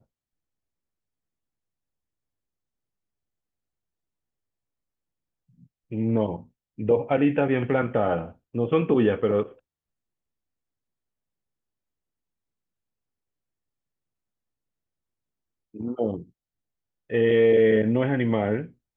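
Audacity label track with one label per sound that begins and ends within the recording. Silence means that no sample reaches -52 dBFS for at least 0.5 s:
5.590000	9.590000	sound
15.740000	16.300000	sound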